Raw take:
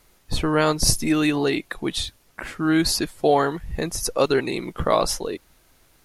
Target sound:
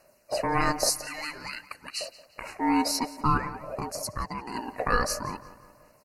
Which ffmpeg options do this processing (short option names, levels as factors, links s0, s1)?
-filter_complex "[0:a]asettb=1/sr,asplit=3[s0][s1][s2];[s0]atrim=end=0.894[s3];[s1]atrim=start=0.89:end=2.01,asetpts=PTS-STARTPTS,afade=t=in:d=0.004:c=qsin,afade=t=out:st=1.116:d=0.004:c=qsin,highpass=1200[s4];[s2]atrim=start=2.006[s5];[s3][s4]acrossfade=d=0.004:c1=hsin:c2=qsin[s6];[s6][s5]acrossfade=d=0.004:c1=qsin:c2=hsin,asettb=1/sr,asplit=3[s7][s8][s9];[s7]atrim=end=3.374[s10];[s8]atrim=start=3.37:end=4.55,asetpts=PTS-STARTPTS,afade=t=in:d=0.004:c=qsin,afade=t=out:st=1.176:d=0.004:c=qsin,acompressor=threshold=0.0501:ratio=5[s11];[s9]atrim=start=4.546[s12];[s10][s11]acrossfade=d=0.004:c1=hsin:c2=qsin[s13];[s13][s12]acrossfade=d=0.004:c1=qsin:c2=hsin,aeval=exprs='val(0)*sin(2*PI*600*n/s)':c=same,aphaser=in_gain=1:out_gain=1:delay=4.2:decay=0.36:speed=0.51:type=sinusoidal,asuperstop=centerf=3400:order=12:qfactor=3.1,asplit=2[s14][s15];[s15]adelay=176,lowpass=f=4000:p=1,volume=0.158,asplit=2[s16][s17];[s17]adelay=176,lowpass=f=4000:p=1,volume=0.52,asplit=2[s18][s19];[s19]adelay=176,lowpass=f=4000:p=1,volume=0.52,asplit=2[s20][s21];[s21]adelay=176,lowpass=f=4000:p=1,volume=0.52,asplit=2[s22][s23];[s23]adelay=176,lowpass=f=4000:p=1,volume=0.52[s24];[s14][s16][s18][s20][s22][s24]amix=inputs=6:normalize=0,volume=0.708"